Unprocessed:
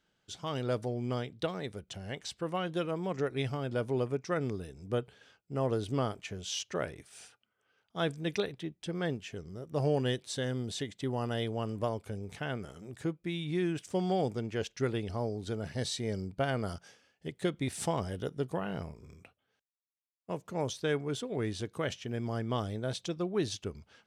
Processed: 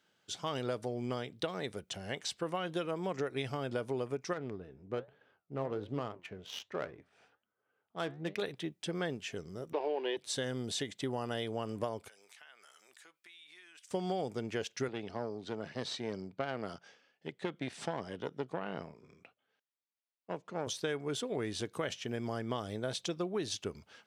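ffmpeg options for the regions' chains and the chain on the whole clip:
-filter_complex "[0:a]asettb=1/sr,asplit=3[s0][s1][s2];[s0]atrim=end=4.334[s3];[s1]atrim=start=4.33:end=8.42,asetpts=PTS-STARTPTS,afade=t=in:d=0.004:c=qsin,afade=t=out:st=4.086:d=0.004:c=qsin,flanger=delay=6.4:depth=9.2:regen=76:speed=1.2:shape=triangular,adynamicsmooth=sensitivity=8:basefreq=1500[s4];[s2]atrim=start=8.416[s5];[s3][s4]acrossfade=d=0.004:c1=hsin:c2=qsin[s6];[s6][s5]acrossfade=d=0.004:c1=qsin:c2=hsin,asettb=1/sr,asplit=3[s7][s8][s9];[s7]atrim=end=9.734[s10];[s8]atrim=start=9.73:end=10.17,asetpts=PTS-STARTPTS,afade=t=in:d=0.004:c=qsin,afade=t=out:st=0.436:d=0.004:c=qsin,aeval=exprs='val(0)+0.5*0.01*sgn(val(0))':c=same,highpass=f=340:w=0.5412,highpass=f=340:w=1.3066,equalizer=f=360:t=q:w=4:g=10,equalizer=f=910:t=q:w=4:g=10,equalizer=f=1300:t=q:w=4:g=-8,equalizer=f=2400:t=q:w=4:g=8,lowpass=f=3800:w=0.5412,lowpass=f=3800:w=1.3066[s11];[s9]atrim=start=10.166[s12];[s10][s11]acrossfade=d=0.004:c1=hsin:c2=qsin[s13];[s13][s12]acrossfade=d=0.004:c1=qsin:c2=hsin,asettb=1/sr,asplit=3[s14][s15][s16];[s14]atrim=end=12.084[s17];[s15]atrim=start=12.08:end=13.91,asetpts=PTS-STARTPTS,afade=t=in:d=0.004:c=qsin,afade=t=out:st=1.826:d=0.004:c=qsin,highpass=1400,acompressor=threshold=0.00112:ratio=4:attack=3.2:release=140:knee=1:detection=peak[s18];[s16]atrim=start=13.906[s19];[s17][s18]acrossfade=d=0.004:c1=hsin:c2=qsin[s20];[s20][s19]acrossfade=d=0.004:c1=qsin:c2=hsin,asettb=1/sr,asplit=3[s21][s22][s23];[s21]atrim=end=14.884[s24];[s22]atrim=start=14.88:end=20.67,asetpts=PTS-STARTPTS,afade=t=in:d=0.004:c=qsin,afade=t=out:st=5.786:d=0.004:c=qsin,aeval=exprs='(tanh(15.8*val(0)+0.7)-tanh(0.7))/15.8':c=same,highpass=130,lowpass=4400[s25];[s23]atrim=start=20.666[s26];[s24][s25]acrossfade=d=0.004:c1=hsin:c2=qsin[s27];[s27][s26]acrossfade=d=0.004:c1=qsin:c2=hsin,highpass=83,lowshelf=f=220:g=-8,acompressor=threshold=0.0178:ratio=6,volume=1.5"

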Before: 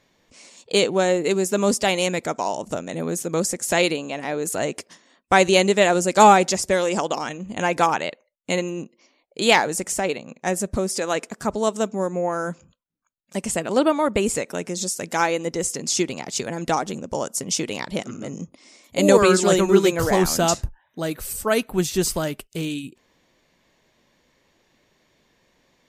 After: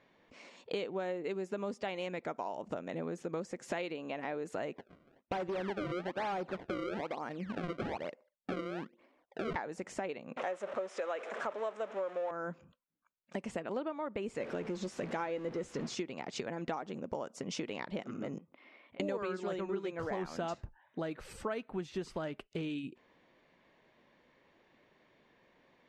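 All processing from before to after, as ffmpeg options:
-filter_complex "[0:a]asettb=1/sr,asplit=3[s0][s1][s2];[s0]atrim=end=4.764[s3];[s1]atrim=start=4.76:end=9.56,asetpts=PTS-STARTPTS,afade=t=in:d=0.004:c=qsin,afade=t=out:st=4.796:d=0.004:c=qsin,lowpass=f=1300:p=1,acrusher=samples=29:mix=1:aa=0.000001:lfo=1:lforange=46.4:lforate=1.1,volume=8.41,asoftclip=hard,volume=0.119[s4];[s2]atrim=start=9.556[s5];[s3][s4]acrossfade=d=0.004:c1=hsin:c2=qsin[s6];[s6][s5]acrossfade=d=0.004:c1=qsin:c2=hsin,asettb=1/sr,asplit=3[s7][s8][s9];[s7]atrim=end=10.374[s10];[s8]atrim=start=10.37:end=12.31,asetpts=PTS-STARTPTS,afade=t=in:d=0.004:c=qsin,afade=t=out:st=1.936:d=0.004:c=qsin,aeval=exprs='val(0)+0.5*0.0596*sgn(val(0))':c=same,highpass=480,equalizer=f=570:t=q:w=4:g=8,equalizer=f=1300:t=q:w=4:g=3,equalizer=f=4600:t=q:w=4:g=-8,lowpass=f=9900:w=0.5412,lowpass=f=9900:w=1.3066[s11];[s9]atrim=start=12.306[s12];[s10][s11]acrossfade=d=0.004:c1=hsin:c2=qsin[s13];[s13][s12]acrossfade=d=0.004:c1=qsin:c2=hsin,asettb=1/sr,asplit=3[s14][s15][s16];[s14]atrim=end=14.404[s17];[s15]atrim=start=14.4:end=15.95,asetpts=PTS-STARTPTS,afade=t=in:d=0.004:c=qsin,afade=t=out:st=1.546:d=0.004:c=qsin,aeval=exprs='val(0)+0.5*0.0422*sgn(val(0))':c=same,lowshelf=f=490:g=5.5,asplit=2[s18][s19];[s19]adelay=14,volume=0.224[s20];[s18][s20]amix=inputs=2:normalize=0,atrim=end_sample=68355[s21];[s16]atrim=start=15.946[s22];[s17][s21]acrossfade=d=0.004:c1=hsin:c2=qsin[s23];[s23][s22]acrossfade=d=0.004:c1=qsin:c2=hsin,asettb=1/sr,asplit=3[s24][s25][s26];[s24]atrim=end=18.384[s27];[s25]atrim=start=18.38:end=19,asetpts=PTS-STARTPTS,afade=t=in:d=0.004:c=qsin,afade=t=out:st=0.616:d=0.004:c=qsin,lowpass=f=3200:w=0.5412,lowpass=f=3200:w=1.3066,lowshelf=f=490:g=-8,acompressor=threshold=0.00355:ratio=16:attack=3.2:release=140:knee=1:detection=peak[s28];[s26]atrim=start=18.996[s29];[s27][s28]acrossfade=d=0.004:c1=hsin:c2=qsin[s30];[s30][s29]acrossfade=d=0.004:c1=qsin:c2=hsin,lowpass=2500,lowshelf=f=110:g=-11.5,acompressor=threshold=0.02:ratio=6,volume=0.841"

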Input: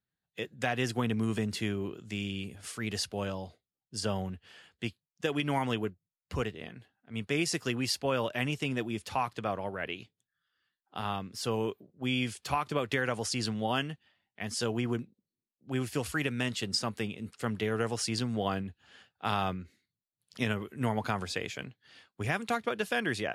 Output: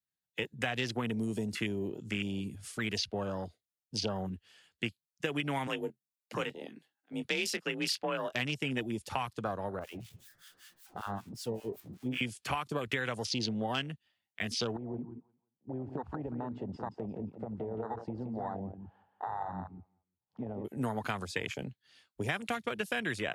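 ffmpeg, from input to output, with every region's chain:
-filter_complex "[0:a]asettb=1/sr,asplit=3[s0][s1][s2];[s0]atrim=end=5.674[s3];[s1]atrim=start=5.67:end=8.33,asetpts=PTS-STARTPTS,afade=t=in:d=0.004:c=qsin,afade=t=out:st=2.656:d=0.004:c=qsin,highpass=f=330:p=1,afreqshift=38,asplit=2[s4][s5];[s5]adelay=23,volume=0.282[s6];[s4][s6]amix=inputs=2:normalize=0,atrim=end_sample=117306[s7];[s2]atrim=start=8.326[s8];[s3][s7]acrossfade=d=0.004:c1=hsin:c2=qsin[s9];[s9][s8]acrossfade=d=0.004:c1=qsin:c2=hsin,asettb=1/sr,asplit=3[s10][s11][s12];[s10]atrim=end=9.794[s13];[s11]atrim=start=9.79:end=12.21,asetpts=PTS-STARTPTS,afade=t=in:d=0.004:c=qsin,afade=t=out:st=2.416:d=0.004:c=qsin,aeval=exprs='val(0)+0.5*0.0133*sgn(val(0))':c=same,acrossover=split=1000[s14][s15];[s14]aeval=exprs='val(0)*(1-1/2+1/2*cos(2*PI*5.2*n/s))':c=same[s16];[s15]aeval=exprs='val(0)*(1-1/2-1/2*cos(2*PI*5.2*n/s))':c=same[s17];[s16][s17]amix=inputs=2:normalize=0,flanger=delay=3.6:depth=8.6:regen=86:speed=1.2:shape=triangular[s18];[s12]atrim=start=12.206[s19];[s13][s18]acrossfade=d=0.004:c1=hsin:c2=qsin[s20];[s20][s19]acrossfade=d=0.004:c1=qsin:c2=hsin,asettb=1/sr,asplit=3[s21][s22][s23];[s21]atrim=end=14.764[s24];[s22]atrim=start=14.76:end=20.65,asetpts=PTS-STARTPTS,afade=t=in:d=0.004:c=qsin,afade=t=out:st=5.886:d=0.004:c=qsin,lowpass=f=870:t=q:w=7.4,acompressor=threshold=0.0112:ratio=5:attack=3.2:release=140:knee=1:detection=peak,aecho=1:1:174|348|522:0.422|0.101|0.0243,atrim=end_sample=259749[s25];[s23]atrim=start=20.646[s26];[s24][s25]acrossfade=d=0.004:c1=hsin:c2=qsin[s27];[s27][s26]acrossfade=d=0.004:c1=qsin:c2=hsin,afwtdn=0.0112,highshelf=f=3000:g=11,acrossover=split=150|3700[s28][s29][s30];[s28]acompressor=threshold=0.00282:ratio=4[s31];[s29]acompressor=threshold=0.0126:ratio=4[s32];[s30]acompressor=threshold=0.00398:ratio=4[s33];[s31][s32][s33]amix=inputs=3:normalize=0,volume=1.78"

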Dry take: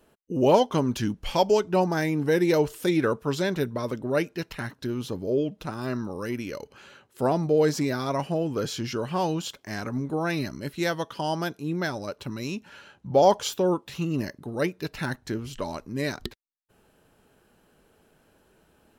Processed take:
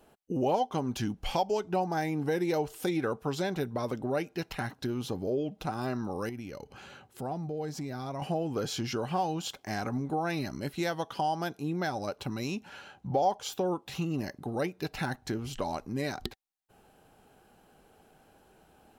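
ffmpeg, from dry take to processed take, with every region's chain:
-filter_complex "[0:a]asettb=1/sr,asplit=3[s0][s1][s2];[s0]atrim=end=6.294[s3];[s1]atrim=start=6.29:end=8.22,asetpts=PTS-STARTPTS,afade=t=in:d=0.004:c=qsin,afade=t=out:st=1.926:d=0.004:c=qsin,bass=f=250:g=7,treble=f=4000:g=0,acompressor=threshold=0.00562:ratio=2:attack=3.2:release=140:knee=1:detection=peak[s4];[s2]atrim=start=8.216[s5];[s3][s4]acrossfade=d=0.004:c1=hsin:c2=qsin[s6];[s6][s5]acrossfade=d=0.004:c1=qsin:c2=hsin,equalizer=f=770:t=o:w=0.2:g=12,bandreject=f=1800:w=26,acompressor=threshold=0.0316:ratio=2.5"

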